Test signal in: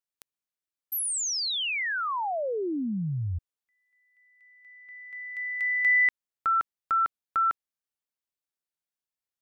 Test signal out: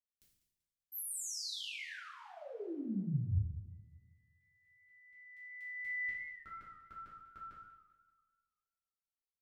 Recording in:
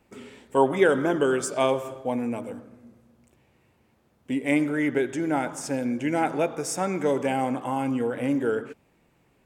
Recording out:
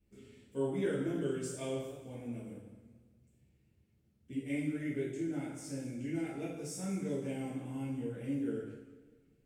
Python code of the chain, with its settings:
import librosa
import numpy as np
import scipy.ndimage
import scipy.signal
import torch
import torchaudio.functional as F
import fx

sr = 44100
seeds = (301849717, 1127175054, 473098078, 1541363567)

y = fx.tone_stack(x, sr, knobs='10-0-1')
y = fx.rev_double_slope(y, sr, seeds[0], early_s=0.72, late_s=1.8, knee_db=-18, drr_db=-8.0)
y = fx.echo_warbled(y, sr, ms=194, feedback_pct=41, rate_hz=2.8, cents=134, wet_db=-15.5)